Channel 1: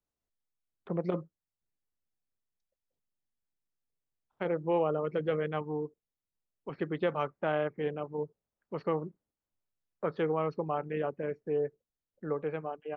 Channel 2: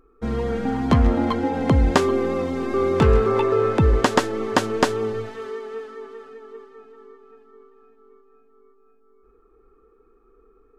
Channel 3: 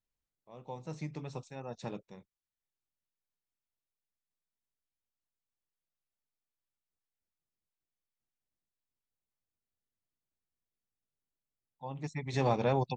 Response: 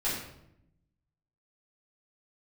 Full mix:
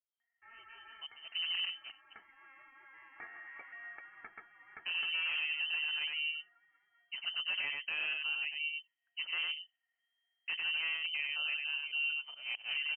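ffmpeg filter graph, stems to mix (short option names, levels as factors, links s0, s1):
-filter_complex "[0:a]equalizer=f=120:t=o:w=0.83:g=3.5,aeval=exprs='0.0708*(abs(mod(val(0)/0.0708+3,4)-2)-1)':c=same,adynamicequalizer=threshold=0.00631:dfrequency=1700:dqfactor=0.7:tfrequency=1700:tqfactor=0.7:attack=5:release=100:ratio=0.375:range=2:mode=cutabove:tftype=highshelf,adelay=450,volume=0.668,asplit=2[s0][s1];[s1]volume=0.596[s2];[1:a]highpass=f=1300:w=0.5412,highpass=f=1300:w=1.3066,aecho=1:1:2.1:0.8,alimiter=limit=0.15:level=0:latency=1:release=347,adelay=200,volume=0.133[s3];[2:a]lowpass=4200,acrusher=bits=3:mode=log:mix=0:aa=0.000001,aeval=exprs='val(0)*pow(10,-21*if(lt(mod(-4.7*n/s,1),2*abs(-4.7)/1000),1-mod(-4.7*n/s,1)/(2*abs(-4.7)/1000),(mod(-4.7*n/s,1)-2*abs(-4.7)/1000)/(1-2*abs(-4.7)/1000))/20)':c=same,volume=0.531,asplit=2[s4][s5];[s5]apad=whole_len=484320[s6];[s3][s6]sidechaincompress=threshold=0.00355:ratio=8:attack=9.7:release=964[s7];[s2]aecho=0:1:97:1[s8];[s0][s7][s4][s8]amix=inputs=4:normalize=0,lowpass=f=2700:t=q:w=0.5098,lowpass=f=2700:t=q:w=0.6013,lowpass=f=2700:t=q:w=0.9,lowpass=f=2700:t=q:w=2.563,afreqshift=-3200,alimiter=level_in=1.58:limit=0.0631:level=0:latency=1:release=10,volume=0.631"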